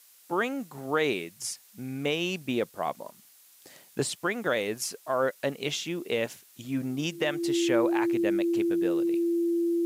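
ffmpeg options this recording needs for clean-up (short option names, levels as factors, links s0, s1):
-af "bandreject=f=340:w=30,afftdn=nr=18:nf=-57"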